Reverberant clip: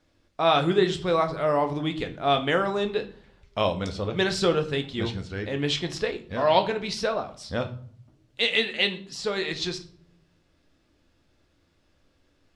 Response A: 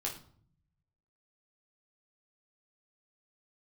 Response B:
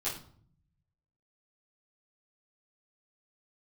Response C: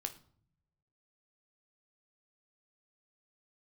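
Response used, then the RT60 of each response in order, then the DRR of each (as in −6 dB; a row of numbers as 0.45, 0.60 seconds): C; 0.55, 0.55, 0.55 seconds; −2.5, −11.5, 6.5 decibels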